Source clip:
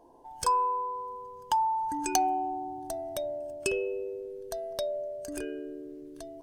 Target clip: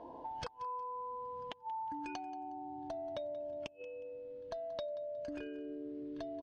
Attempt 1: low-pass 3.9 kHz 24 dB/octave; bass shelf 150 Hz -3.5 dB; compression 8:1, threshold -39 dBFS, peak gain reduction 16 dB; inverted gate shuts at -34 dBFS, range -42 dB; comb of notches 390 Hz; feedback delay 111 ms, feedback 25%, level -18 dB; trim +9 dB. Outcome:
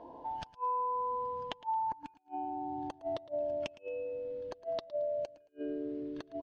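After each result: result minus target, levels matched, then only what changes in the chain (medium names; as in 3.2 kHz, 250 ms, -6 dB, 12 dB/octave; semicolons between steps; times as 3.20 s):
compression: peak gain reduction -8.5 dB; echo 70 ms early
change: compression 8:1, threshold -48.5 dBFS, peak gain reduction 24.5 dB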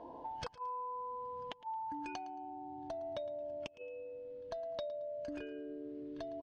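echo 70 ms early
change: feedback delay 181 ms, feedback 25%, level -18 dB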